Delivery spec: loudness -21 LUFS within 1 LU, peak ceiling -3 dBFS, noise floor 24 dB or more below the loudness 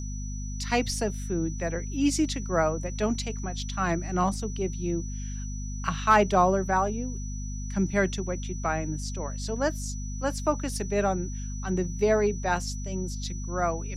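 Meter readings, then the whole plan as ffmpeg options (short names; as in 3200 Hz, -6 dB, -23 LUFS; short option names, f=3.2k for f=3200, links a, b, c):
hum 50 Hz; harmonics up to 250 Hz; hum level -31 dBFS; steady tone 5900 Hz; tone level -43 dBFS; loudness -28.5 LUFS; peak -8.0 dBFS; loudness target -21.0 LUFS
-> -af "bandreject=f=50:t=h:w=6,bandreject=f=100:t=h:w=6,bandreject=f=150:t=h:w=6,bandreject=f=200:t=h:w=6,bandreject=f=250:t=h:w=6"
-af "bandreject=f=5.9k:w=30"
-af "volume=7.5dB,alimiter=limit=-3dB:level=0:latency=1"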